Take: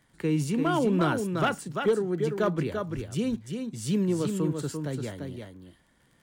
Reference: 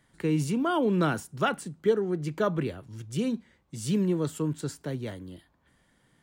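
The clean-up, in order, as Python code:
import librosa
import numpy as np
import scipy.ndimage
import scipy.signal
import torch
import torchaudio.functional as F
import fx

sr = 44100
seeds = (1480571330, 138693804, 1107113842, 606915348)

y = fx.fix_declip(x, sr, threshold_db=-16.5)
y = fx.fix_declick_ar(y, sr, threshold=6.5)
y = fx.highpass(y, sr, hz=140.0, slope=24, at=(2.95, 3.07), fade=0.02)
y = fx.fix_echo_inverse(y, sr, delay_ms=343, level_db=-5.5)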